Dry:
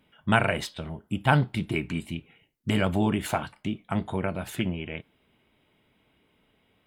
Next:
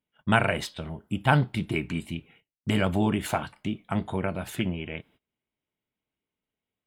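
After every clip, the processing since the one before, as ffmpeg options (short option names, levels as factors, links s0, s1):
-af "agate=range=0.0708:threshold=0.00158:ratio=16:detection=peak"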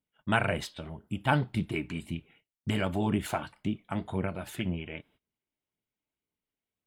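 -af "flanger=delay=0.1:depth=3.4:regen=63:speed=1.9:shape=sinusoidal"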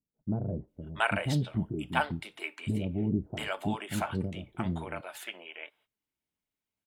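-filter_complex "[0:a]acrossover=split=490[s0][s1];[s1]adelay=680[s2];[s0][s2]amix=inputs=2:normalize=0"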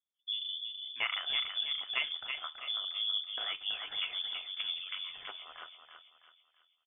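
-filter_complex "[0:a]asplit=2[s0][s1];[s1]adelay=328,lowpass=f=2800:p=1,volume=0.562,asplit=2[s2][s3];[s3]adelay=328,lowpass=f=2800:p=1,volume=0.47,asplit=2[s4][s5];[s5]adelay=328,lowpass=f=2800:p=1,volume=0.47,asplit=2[s6][s7];[s7]adelay=328,lowpass=f=2800:p=1,volume=0.47,asplit=2[s8][s9];[s9]adelay=328,lowpass=f=2800:p=1,volume=0.47,asplit=2[s10][s11];[s11]adelay=328,lowpass=f=2800:p=1,volume=0.47[s12];[s0][s2][s4][s6][s8][s10][s12]amix=inputs=7:normalize=0,lowpass=f=3100:t=q:w=0.5098,lowpass=f=3100:t=q:w=0.6013,lowpass=f=3100:t=q:w=0.9,lowpass=f=3100:t=q:w=2.563,afreqshift=-3600,volume=0.501"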